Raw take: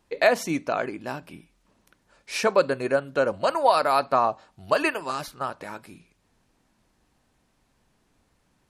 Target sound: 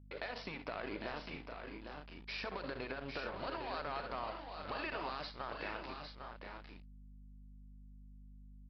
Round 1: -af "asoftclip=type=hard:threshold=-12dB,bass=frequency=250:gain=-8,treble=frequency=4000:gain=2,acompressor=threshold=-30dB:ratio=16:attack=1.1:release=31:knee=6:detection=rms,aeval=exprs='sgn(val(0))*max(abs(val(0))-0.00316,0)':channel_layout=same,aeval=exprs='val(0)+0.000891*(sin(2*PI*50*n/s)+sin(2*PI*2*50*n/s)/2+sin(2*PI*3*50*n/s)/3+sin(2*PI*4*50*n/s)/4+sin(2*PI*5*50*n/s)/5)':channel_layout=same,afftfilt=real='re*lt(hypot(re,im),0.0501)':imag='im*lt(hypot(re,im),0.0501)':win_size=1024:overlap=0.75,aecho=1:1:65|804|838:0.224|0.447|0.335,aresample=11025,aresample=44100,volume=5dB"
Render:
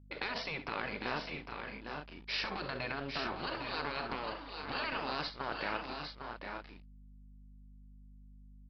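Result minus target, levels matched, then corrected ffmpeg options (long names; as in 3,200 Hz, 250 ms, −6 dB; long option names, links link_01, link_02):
downward compressor: peak gain reduction −8 dB
-af "asoftclip=type=hard:threshold=-12dB,bass=frequency=250:gain=-8,treble=frequency=4000:gain=2,acompressor=threshold=-38.5dB:ratio=16:attack=1.1:release=31:knee=6:detection=rms,aeval=exprs='sgn(val(0))*max(abs(val(0))-0.00316,0)':channel_layout=same,aeval=exprs='val(0)+0.000891*(sin(2*PI*50*n/s)+sin(2*PI*2*50*n/s)/2+sin(2*PI*3*50*n/s)/3+sin(2*PI*4*50*n/s)/4+sin(2*PI*5*50*n/s)/5)':channel_layout=same,afftfilt=real='re*lt(hypot(re,im),0.0501)':imag='im*lt(hypot(re,im),0.0501)':win_size=1024:overlap=0.75,aecho=1:1:65|804|838:0.224|0.447|0.335,aresample=11025,aresample=44100,volume=5dB"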